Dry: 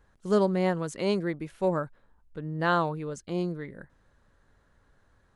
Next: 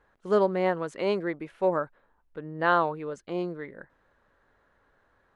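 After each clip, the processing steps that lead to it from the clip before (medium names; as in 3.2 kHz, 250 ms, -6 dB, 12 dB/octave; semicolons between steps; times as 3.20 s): tone controls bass -12 dB, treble -14 dB; trim +3 dB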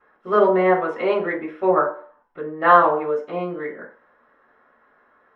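reverberation RT60 0.50 s, pre-delay 3 ms, DRR -14 dB; trim -7.5 dB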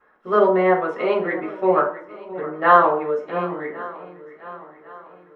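shuffle delay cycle 1105 ms, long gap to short 1.5:1, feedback 38%, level -16.5 dB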